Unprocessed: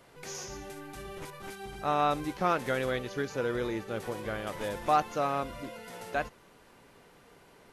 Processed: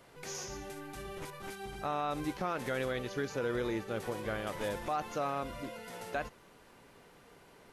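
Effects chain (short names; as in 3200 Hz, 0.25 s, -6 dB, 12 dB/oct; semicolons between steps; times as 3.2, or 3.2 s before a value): limiter -23.5 dBFS, peak gain reduction 9 dB; gain -1 dB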